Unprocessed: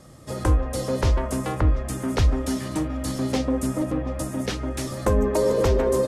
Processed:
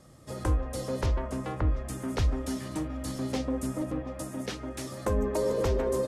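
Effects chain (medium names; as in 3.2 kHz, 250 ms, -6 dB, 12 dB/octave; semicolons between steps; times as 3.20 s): 1.06–1.71 s: treble shelf 6.6 kHz -11.5 dB; 4.01–5.10 s: high-pass 120 Hz 6 dB/octave; trim -7 dB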